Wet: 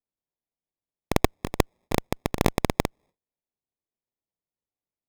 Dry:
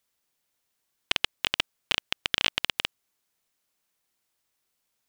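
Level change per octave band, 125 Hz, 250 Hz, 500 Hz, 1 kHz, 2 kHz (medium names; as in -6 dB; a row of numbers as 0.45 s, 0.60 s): +20.0 dB, +18.0 dB, +15.5 dB, +8.5 dB, -4.5 dB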